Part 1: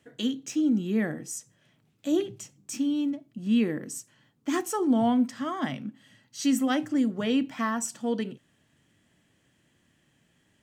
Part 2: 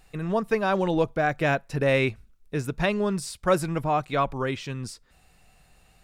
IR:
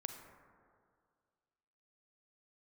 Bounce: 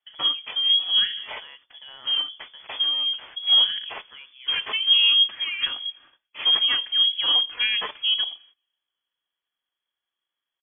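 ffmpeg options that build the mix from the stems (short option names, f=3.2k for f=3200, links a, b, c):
-filter_complex "[0:a]aecho=1:1:4.4:0.46,volume=1.5dB,asplit=2[a][b];[b]volume=-19dB[c];[1:a]aemphasis=mode=production:type=75fm,acompressor=threshold=-30dB:ratio=3,volume=-15.5dB,asplit=2[d][e];[e]volume=-8dB[f];[2:a]atrim=start_sample=2205[g];[c][f]amix=inputs=2:normalize=0[h];[h][g]afir=irnorm=-1:irlink=0[i];[a][d][i]amix=inputs=3:normalize=0,agate=range=-22dB:threshold=-51dB:ratio=16:detection=peak,acrusher=samples=8:mix=1:aa=0.000001,lowpass=f=3k:t=q:w=0.5098,lowpass=f=3k:t=q:w=0.6013,lowpass=f=3k:t=q:w=0.9,lowpass=f=3k:t=q:w=2.563,afreqshift=-3500"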